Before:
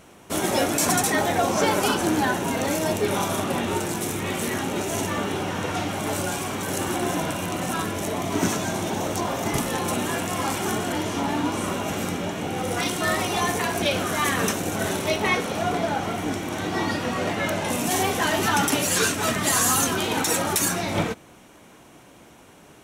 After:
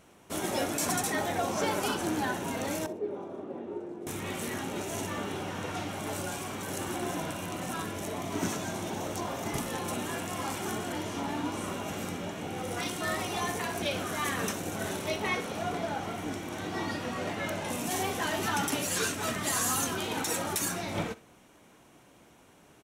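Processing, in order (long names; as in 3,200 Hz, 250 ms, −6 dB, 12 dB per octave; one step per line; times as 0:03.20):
0:02.86–0:04.07: resonant band-pass 390 Hz, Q 1.9
on a send: repeating echo 63 ms, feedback 27%, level −19 dB
on the sum: level −8.5 dB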